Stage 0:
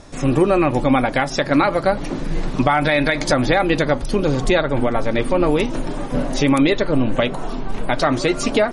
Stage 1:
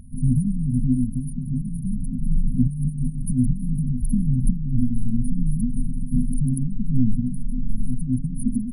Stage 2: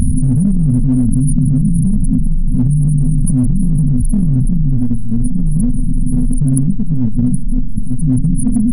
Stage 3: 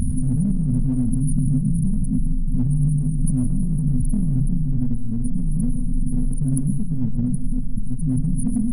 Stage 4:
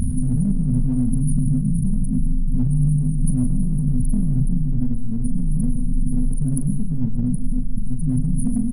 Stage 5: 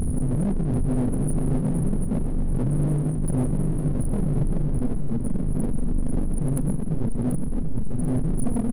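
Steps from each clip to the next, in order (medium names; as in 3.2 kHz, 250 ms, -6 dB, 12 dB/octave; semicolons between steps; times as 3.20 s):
peaking EQ 730 Hz -7.5 dB 2.1 oct; FFT band-reject 260–9300 Hz; trim +3 dB
in parallel at -9 dB: hard clipper -20.5 dBFS, distortion -8 dB; on the sum: level flattener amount 100%
plate-style reverb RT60 0.72 s, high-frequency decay 0.95×, pre-delay 90 ms, DRR 9 dB; trim -8.5 dB
doubling 40 ms -12 dB
hard clipper -20 dBFS, distortion -9 dB; feedback delay 737 ms, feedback 42%, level -7.5 dB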